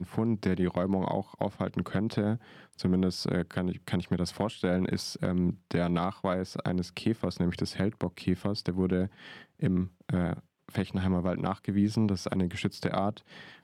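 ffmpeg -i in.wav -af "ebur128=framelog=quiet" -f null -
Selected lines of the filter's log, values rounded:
Integrated loudness:
  I:         -30.7 LUFS
  Threshold: -40.9 LUFS
Loudness range:
  LRA:         1.2 LU
  Threshold: -51.0 LUFS
  LRA low:   -31.6 LUFS
  LRA high:  -30.4 LUFS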